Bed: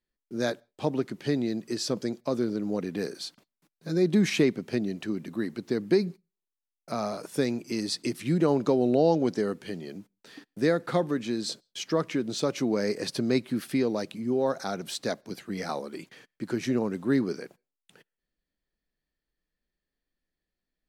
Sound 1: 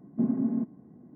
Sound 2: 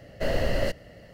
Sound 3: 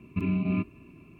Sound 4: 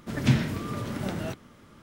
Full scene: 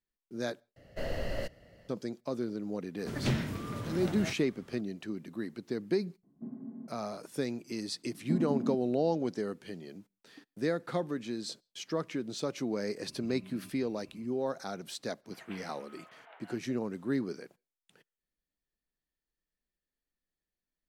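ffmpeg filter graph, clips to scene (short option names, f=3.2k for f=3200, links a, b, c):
-filter_complex "[4:a]asplit=2[a][b];[1:a]asplit=2[c][d];[0:a]volume=-7dB[e];[a]aeval=exprs='0.158*(abs(mod(val(0)/0.158+3,4)-2)-1)':c=same[f];[3:a]acompressor=threshold=-39dB:ratio=6:attack=3.2:release=140:knee=1:detection=peak[g];[b]highpass=f=590:t=q:w=0.5412,highpass=f=590:t=q:w=1.307,lowpass=f=3k:t=q:w=0.5176,lowpass=f=3k:t=q:w=0.7071,lowpass=f=3k:t=q:w=1.932,afreqshift=75[h];[e]asplit=2[i][j];[i]atrim=end=0.764[k];[2:a]atrim=end=1.13,asetpts=PTS-STARTPTS,volume=-9.5dB[l];[j]atrim=start=1.886[m];[f]atrim=end=1.82,asetpts=PTS-STARTPTS,volume=-5.5dB,afade=t=in:d=0.004:c=hsin,afade=t=out:st=1.816:d=0.004:c=hsin,adelay=2990[n];[c]atrim=end=1.15,asetpts=PTS-STARTPTS,volume=-16.5dB,afade=t=in:d=0.004:c=hsin,afade=t=out:st=1.146:d=0.004:c=hsin,adelay=6230[o];[d]atrim=end=1.15,asetpts=PTS-STARTPTS,volume=-5.5dB,afade=t=in:d=0.004:c=hsin,afade=t=out:st=1.146:d=0.004:c=hsin,adelay=8110[p];[g]atrim=end=1.19,asetpts=PTS-STARTPTS,volume=-8.5dB,afade=t=in:d=0.004:c=hsin,afade=t=out:st=1.186:d=0.004:c=hsin,adelay=13070[q];[h]atrim=end=1.82,asetpts=PTS-STARTPTS,volume=-15.5dB,afade=t=in:d=0.004:c=hsin,afade=t=out:st=1.816:d=0.004:c=hsin,adelay=672084S[r];[k][l]acrossfade=d=0.004:c1=hsin:c2=hsin[s];[s][m]acrossfade=d=0.004:c1=hsin:c2=hsin[t];[t][n][o][p][q][r]amix=inputs=6:normalize=0"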